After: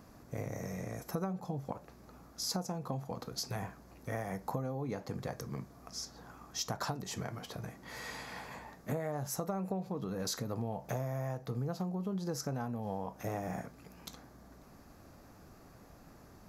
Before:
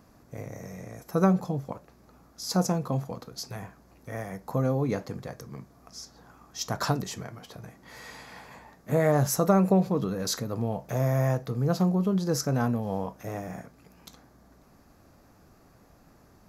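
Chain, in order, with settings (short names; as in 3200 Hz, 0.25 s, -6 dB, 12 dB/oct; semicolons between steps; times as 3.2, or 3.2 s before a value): dynamic EQ 820 Hz, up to +5 dB, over -48 dBFS, Q 3.4; compressor 12:1, threshold -34 dBFS, peak gain reduction 18.5 dB; gain +1 dB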